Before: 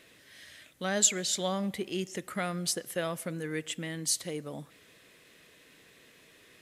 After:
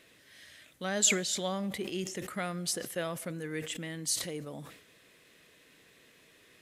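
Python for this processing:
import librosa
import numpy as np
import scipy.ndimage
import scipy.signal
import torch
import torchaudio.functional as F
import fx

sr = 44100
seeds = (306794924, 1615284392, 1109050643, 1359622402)

y = fx.sustainer(x, sr, db_per_s=79.0)
y = F.gain(torch.from_numpy(y), -2.5).numpy()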